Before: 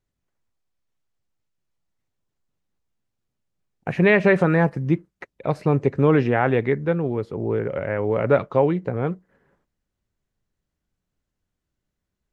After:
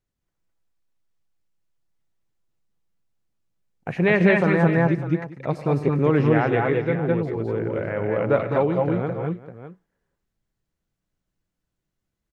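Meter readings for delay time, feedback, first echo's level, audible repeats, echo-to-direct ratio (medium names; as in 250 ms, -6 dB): 97 ms, no regular repeats, -15.5 dB, 5, -1.0 dB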